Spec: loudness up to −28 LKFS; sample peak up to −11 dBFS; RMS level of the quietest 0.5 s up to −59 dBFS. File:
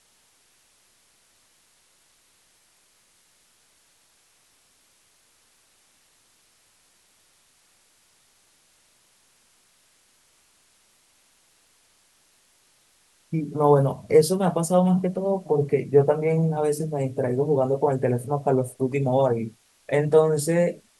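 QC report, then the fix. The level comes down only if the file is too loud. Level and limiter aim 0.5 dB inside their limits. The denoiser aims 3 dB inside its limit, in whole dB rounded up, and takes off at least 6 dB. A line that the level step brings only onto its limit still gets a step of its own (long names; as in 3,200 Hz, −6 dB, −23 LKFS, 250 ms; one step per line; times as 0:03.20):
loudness −22.5 LKFS: out of spec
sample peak −5.5 dBFS: out of spec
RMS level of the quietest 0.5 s −62 dBFS: in spec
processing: level −6 dB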